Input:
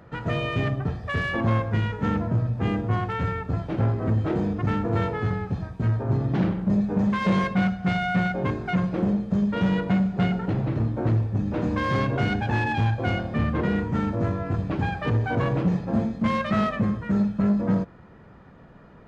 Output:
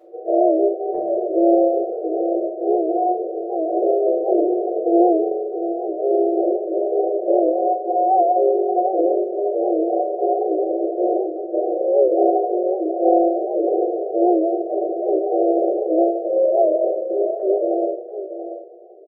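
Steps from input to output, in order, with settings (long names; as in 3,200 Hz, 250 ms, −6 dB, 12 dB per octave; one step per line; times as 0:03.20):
brick-wall band-pass 330–760 Hz
dynamic equaliser 570 Hz, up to +5 dB, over −44 dBFS, Q 1.9
0:00.94–0:02.34: upward compression, threshold −31 dBFS
single-tap delay 684 ms −10.5 dB
rectangular room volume 170 cubic metres, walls mixed, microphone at 3.1 metres
wow of a warped record 78 rpm, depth 100 cents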